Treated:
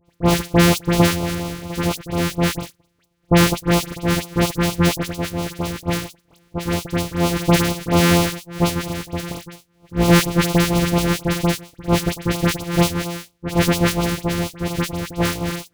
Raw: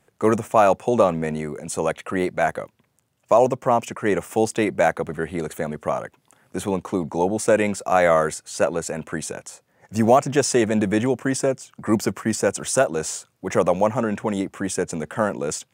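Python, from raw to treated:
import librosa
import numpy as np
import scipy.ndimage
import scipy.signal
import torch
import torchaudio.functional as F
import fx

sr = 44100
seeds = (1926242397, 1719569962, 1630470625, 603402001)

y = np.r_[np.sort(x[:len(x) // 256 * 256].reshape(-1, 256), axis=1).ravel(), x[len(x) // 256 * 256:]]
y = fx.dispersion(y, sr, late='highs', ms=60.0, hz=2300.0)
y = fx.filter_lfo_notch(y, sr, shape='sine', hz=4.3, low_hz=670.0, high_hz=1800.0, q=1.4)
y = y * librosa.db_to_amplitude(3.0)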